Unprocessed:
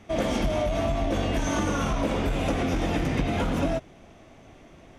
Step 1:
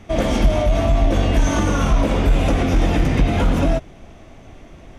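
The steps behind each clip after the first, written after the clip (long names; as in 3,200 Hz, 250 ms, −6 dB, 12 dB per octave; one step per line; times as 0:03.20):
low-shelf EQ 73 Hz +11.5 dB
level +5.5 dB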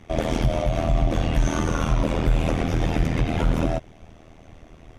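amplitude modulation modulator 80 Hz, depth 85%
level −1.5 dB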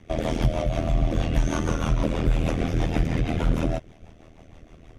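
rotating-speaker cabinet horn 6.3 Hz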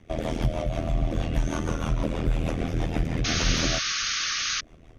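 sound drawn into the spectrogram noise, 0:03.24–0:04.61, 1,100–6,700 Hz −25 dBFS
level −3 dB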